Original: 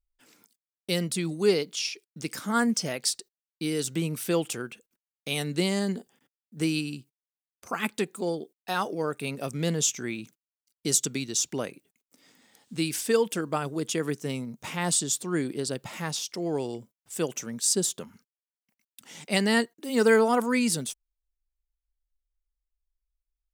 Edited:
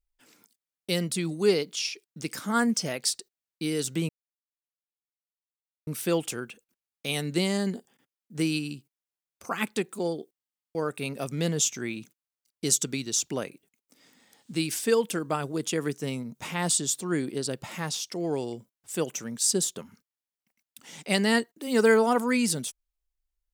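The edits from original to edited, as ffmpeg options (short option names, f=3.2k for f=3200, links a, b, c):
-filter_complex "[0:a]asplit=12[a][b][c][d][e][f][g][h][i][j][k][l];[a]atrim=end=4.09,asetpts=PTS-STARTPTS,afade=t=out:st=4.086:d=0.004:c=hsin,apad=pad_dur=1.78[m];[b]atrim=start=4.09:end=8.612,asetpts=PTS-STARTPTS,afade=t=in:d=0.004:c=hsin[n];[c]atrim=start=8.568:end=8.612[o];[d]atrim=start=8.568:end=8.612[p];[e]atrim=start=8.568:end=8.612[q];[f]atrim=start=8.568:end=8.612[r];[g]atrim=start=8.568:end=8.612[s];[h]atrim=start=8.568:end=8.612[t];[i]atrim=start=8.568:end=8.612[u];[j]atrim=start=8.568:end=8.612[v];[k]atrim=start=8.568:end=8.612[w];[l]atrim=start=8.968[x];[m][n]concat=n=2:v=0:a=1[y];[y][o]acrossfade=d=0.004:c1=hsin:c2=hsin[z];[z][p]acrossfade=d=0.004:c1=hsin:c2=hsin[aa];[aa][q]acrossfade=d=0.004:c1=hsin:c2=hsin[ab];[ab][r]acrossfade=d=0.004:c1=hsin:c2=hsin[ac];[ac][s]acrossfade=d=0.004:c1=hsin:c2=hsin[ad];[ad][t]acrossfade=d=0.004:c1=hsin:c2=hsin[ae];[ae][u]acrossfade=d=0.004:c1=hsin:c2=hsin[af];[af][v]acrossfade=d=0.004:c1=hsin:c2=hsin[ag];[ag][w]acrossfade=d=0.004:c1=hsin:c2=hsin[ah];[ah][x]acrossfade=d=0.004:c1=hsin:c2=hsin"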